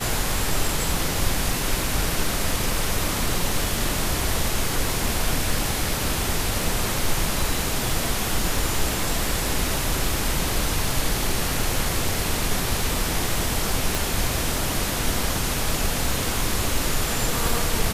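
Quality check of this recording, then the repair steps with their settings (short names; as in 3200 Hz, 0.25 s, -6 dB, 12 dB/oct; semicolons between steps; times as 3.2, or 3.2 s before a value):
crackle 45/s -30 dBFS
13.95 pop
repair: de-click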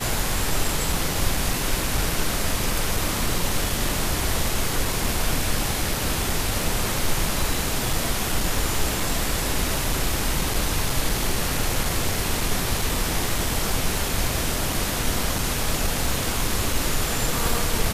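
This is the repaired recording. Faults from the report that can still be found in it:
13.95 pop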